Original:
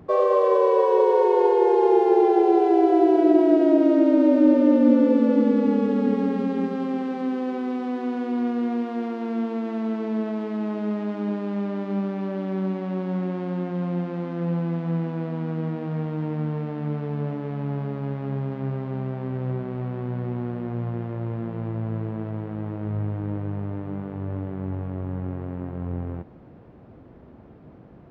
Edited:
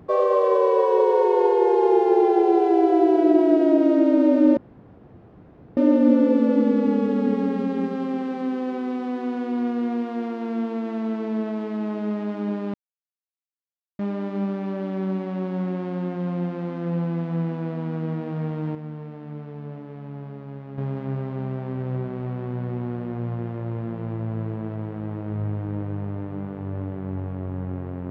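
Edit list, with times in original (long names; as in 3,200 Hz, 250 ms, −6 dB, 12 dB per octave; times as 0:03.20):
0:04.57: splice in room tone 1.20 s
0:11.54: splice in silence 1.25 s
0:16.30–0:18.33: clip gain −8 dB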